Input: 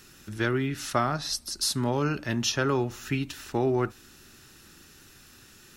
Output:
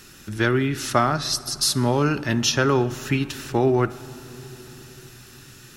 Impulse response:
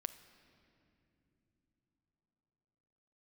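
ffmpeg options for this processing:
-filter_complex "[0:a]asplit=2[a][b];[1:a]atrim=start_sample=2205,asetrate=27783,aresample=44100[c];[b][c]afir=irnorm=-1:irlink=0,volume=0.5dB[d];[a][d]amix=inputs=2:normalize=0"

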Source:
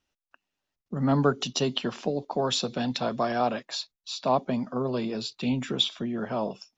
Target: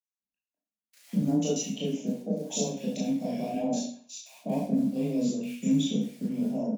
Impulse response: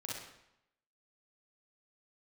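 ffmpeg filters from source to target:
-filter_complex "[0:a]agate=range=-18dB:threshold=-39dB:ratio=16:detection=peak,firequalizer=gain_entry='entry(100,0);entry(190,12);entry(340,-3);entry(580,2);entry(1200,-29);entry(2200,0);entry(4500,-11);entry(6500,13);entry(10000,-17)':delay=0.05:min_phase=1,asettb=1/sr,asplit=3[a][b][c];[a]atrim=end=1.014[d];[b]atrim=start=1.01:end=3.34,asetpts=PTS-STARTPTS,afade=t=in:d=0.004:c=qsin,afade=t=out:st=2.326:d=0.004:c=qsin,acrossover=split=220[e][f];[e]acompressor=threshold=-34dB:ratio=2.5[g];[g][f]amix=inputs=2:normalize=0[h];[c]atrim=start=3.336[i];[d][h]acrossfade=d=0.004:c1=hsin:c2=qsin[j];[j][i]acrossfade=d=0.004:c1=qsin:c2=hsin,afreqshift=19,acrusher=bits=7:mode=log:mix=0:aa=0.000001,acrossover=split=1500[k][l];[k]adelay=200[m];[m][l]amix=inputs=2:normalize=0[n];[1:a]atrim=start_sample=2205,asetrate=79380,aresample=44100[o];[n][o]afir=irnorm=-1:irlink=0,volume=1dB"

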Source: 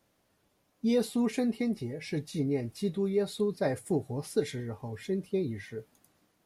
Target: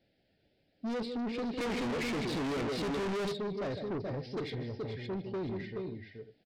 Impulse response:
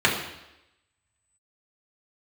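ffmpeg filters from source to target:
-filter_complex "[0:a]asuperstop=centerf=1100:order=4:qfactor=1.2,aecho=1:1:153|428|513:0.237|0.447|0.141,asplit=3[a][b][c];[a]afade=t=out:st=1.57:d=0.02[d];[b]asplit=2[e][f];[f]highpass=f=720:p=1,volume=34dB,asoftclip=type=tanh:threshold=-14.5dB[g];[e][g]amix=inputs=2:normalize=0,lowpass=f=1.5k:p=1,volume=-6dB,afade=t=in:st=1.57:d=0.02,afade=t=out:st=3.31:d=0.02[h];[c]afade=t=in:st=3.31:d=0.02[i];[d][h][i]amix=inputs=3:normalize=0,aresample=11025,aresample=44100,asoftclip=type=tanh:threshold=-32.5dB"

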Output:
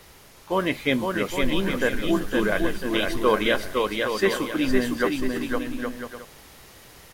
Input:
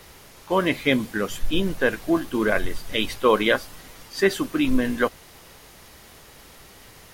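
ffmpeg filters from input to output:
-af "aecho=1:1:510|816|999.6|1110|1176:0.631|0.398|0.251|0.158|0.1,volume=-2.5dB"

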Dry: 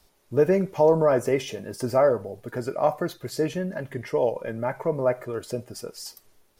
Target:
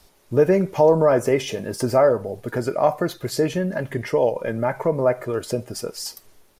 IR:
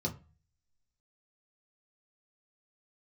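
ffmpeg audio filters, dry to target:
-filter_complex "[0:a]asplit=2[a][b];[b]acompressor=threshold=-28dB:ratio=6,volume=-1dB[c];[a][c]amix=inputs=2:normalize=0,aresample=32000,aresample=44100,volume=1.5dB"

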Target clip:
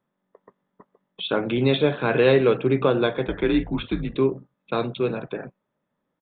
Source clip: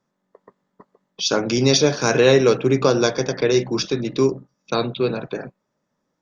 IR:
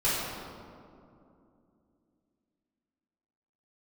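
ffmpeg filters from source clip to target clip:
-filter_complex "[0:a]aresample=8000,aresample=44100,asettb=1/sr,asplit=3[a][b][c];[a]atrim=end=3.274[d];[b]atrim=start=3.27:end=4.15,asetpts=PTS-STARTPTS,afade=t=in:d=0.004:c=qsin,afade=t=out:st=0.876:d=0.004:c=qsin,afreqshift=-83[e];[c]atrim=start=4.146[f];[d][e]acrossfade=d=0.004:c1=hsin:c2=qsin[g];[g][f]acrossfade=d=0.004:c1=qsin:c2=hsin,volume=-3dB"

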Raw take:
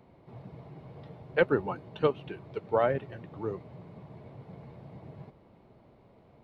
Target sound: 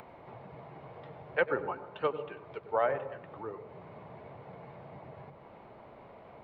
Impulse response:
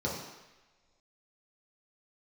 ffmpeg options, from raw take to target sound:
-filter_complex "[0:a]acrossover=split=530 3100:gain=0.224 1 0.126[a][b][c];[a][b][c]amix=inputs=3:normalize=0,acompressor=mode=upward:threshold=-40dB:ratio=2.5,asplit=2[d][e];[1:a]atrim=start_sample=2205,adelay=94[f];[e][f]afir=irnorm=-1:irlink=0,volume=-20dB[g];[d][g]amix=inputs=2:normalize=0"

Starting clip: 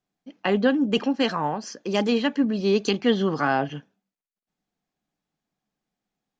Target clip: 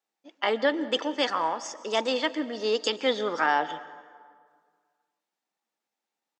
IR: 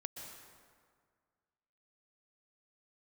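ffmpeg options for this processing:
-filter_complex "[0:a]highpass=450,asetrate=48091,aresample=44100,atempo=0.917004,asplit=2[a][b];[1:a]atrim=start_sample=2205[c];[b][c]afir=irnorm=-1:irlink=0,volume=-7.5dB[d];[a][d]amix=inputs=2:normalize=0,volume=-2dB"

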